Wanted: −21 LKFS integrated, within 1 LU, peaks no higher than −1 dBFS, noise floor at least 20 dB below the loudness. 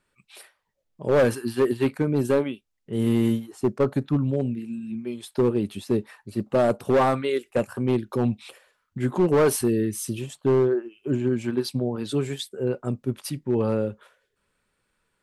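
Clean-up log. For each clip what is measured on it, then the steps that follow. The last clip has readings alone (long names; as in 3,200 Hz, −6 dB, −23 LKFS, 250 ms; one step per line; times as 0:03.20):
share of clipped samples 1.4%; peaks flattened at −14.5 dBFS; integrated loudness −25.0 LKFS; sample peak −14.5 dBFS; target loudness −21.0 LKFS
→ clipped peaks rebuilt −14.5 dBFS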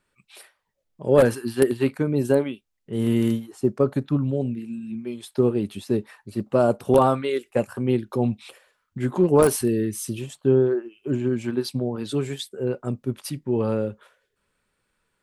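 share of clipped samples 0.0%; integrated loudness −23.5 LKFS; sample peak −5.5 dBFS; target loudness −21.0 LKFS
→ level +2.5 dB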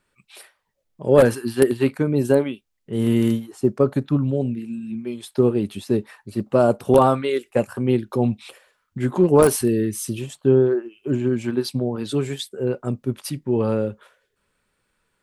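integrated loudness −21.5 LKFS; sample peak −3.0 dBFS; background noise floor −73 dBFS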